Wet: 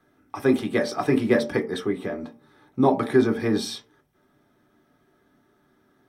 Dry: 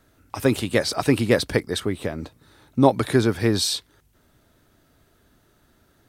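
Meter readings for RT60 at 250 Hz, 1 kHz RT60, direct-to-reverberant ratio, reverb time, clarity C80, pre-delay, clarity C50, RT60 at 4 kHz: 0.40 s, 0.45 s, 1.5 dB, 0.45 s, 19.5 dB, 3 ms, 15.5 dB, 0.15 s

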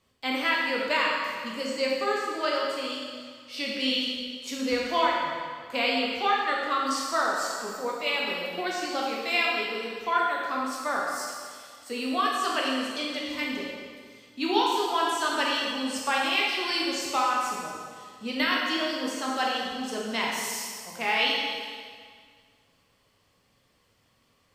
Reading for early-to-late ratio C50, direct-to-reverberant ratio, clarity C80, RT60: -0.5 dB, -4.0 dB, 1.5 dB, 1.9 s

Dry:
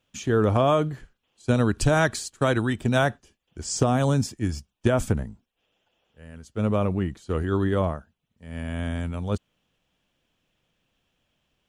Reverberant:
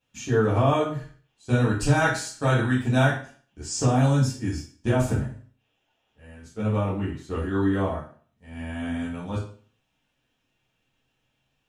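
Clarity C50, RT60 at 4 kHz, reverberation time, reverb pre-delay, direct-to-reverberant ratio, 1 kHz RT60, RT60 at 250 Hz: 6.0 dB, 0.40 s, 0.45 s, 8 ms, -10.0 dB, 0.45 s, 0.45 s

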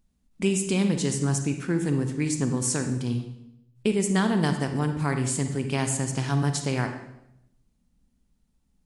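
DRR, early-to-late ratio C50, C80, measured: 6.5 dB, 7.0 dB, 10.0 dB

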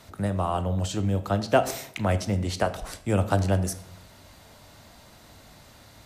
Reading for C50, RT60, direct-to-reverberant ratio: 14.5 dB, 0.70 s, 9.0 dB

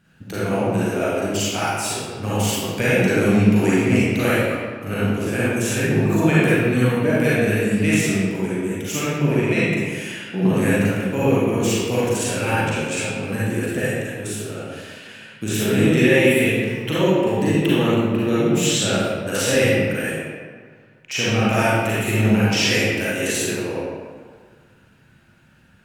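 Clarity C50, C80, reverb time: -6.5 dB, -1.5 dB, 1.8 s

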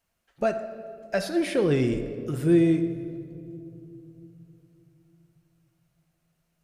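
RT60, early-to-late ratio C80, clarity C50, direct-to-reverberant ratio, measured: 2.9 s, 11.0 dB, 9.5 dB, 7.5 dB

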